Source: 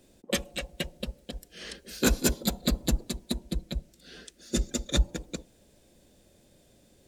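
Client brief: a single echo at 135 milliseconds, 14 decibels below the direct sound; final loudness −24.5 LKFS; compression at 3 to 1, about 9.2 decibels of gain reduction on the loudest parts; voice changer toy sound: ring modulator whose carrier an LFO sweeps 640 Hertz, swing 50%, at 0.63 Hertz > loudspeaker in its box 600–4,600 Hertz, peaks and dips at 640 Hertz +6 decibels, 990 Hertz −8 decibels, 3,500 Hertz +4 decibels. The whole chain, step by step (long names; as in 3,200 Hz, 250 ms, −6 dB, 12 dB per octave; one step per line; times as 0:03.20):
downward compressor 3 to 1, threshold −31 dBFS
single-tap delay 135 ms −14 dB
ring modulator whose carrier an LFO sweeps 640 Hz, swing 50%, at 0.63 Hz
loudspeaker in its box 600–4,600 Hz, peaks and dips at 640 Hz +6 dB, 990 Hz −8 dB, 3,500 Hz +4 dB
level +17 dB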